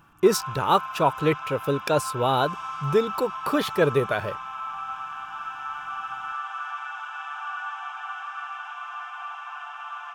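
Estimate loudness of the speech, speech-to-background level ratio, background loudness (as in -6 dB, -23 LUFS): -24.5 LUFS, 9.5 dB, -34.0 LUFS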